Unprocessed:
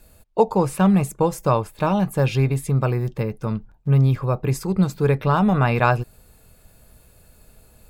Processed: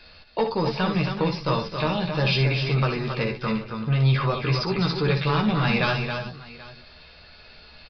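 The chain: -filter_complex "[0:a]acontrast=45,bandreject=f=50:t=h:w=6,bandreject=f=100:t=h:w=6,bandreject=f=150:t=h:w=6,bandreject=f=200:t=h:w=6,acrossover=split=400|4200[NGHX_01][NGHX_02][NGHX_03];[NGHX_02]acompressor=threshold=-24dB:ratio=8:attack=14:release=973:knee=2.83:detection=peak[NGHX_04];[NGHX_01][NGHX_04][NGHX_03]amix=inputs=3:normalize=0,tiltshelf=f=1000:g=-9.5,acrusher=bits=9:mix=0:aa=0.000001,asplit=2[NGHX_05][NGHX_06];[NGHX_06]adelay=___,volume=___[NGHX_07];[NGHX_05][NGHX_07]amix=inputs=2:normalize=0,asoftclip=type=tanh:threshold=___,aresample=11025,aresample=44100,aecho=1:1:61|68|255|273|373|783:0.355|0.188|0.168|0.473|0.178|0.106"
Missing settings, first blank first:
13, -5dB, -13dB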